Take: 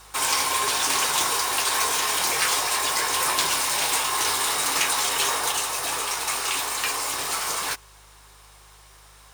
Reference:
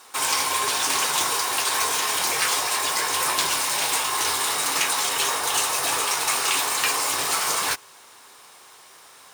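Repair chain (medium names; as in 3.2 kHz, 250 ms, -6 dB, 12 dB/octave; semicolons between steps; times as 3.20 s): de-hum 51.4 Hz, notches 3; gain correction +3.5 dB, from 5.52 s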